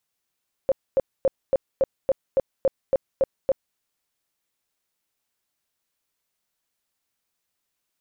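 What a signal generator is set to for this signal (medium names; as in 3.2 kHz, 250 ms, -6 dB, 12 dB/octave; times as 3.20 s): tone bursts 536 Hz, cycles 15, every 0.28 s, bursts 11, -15 dBFS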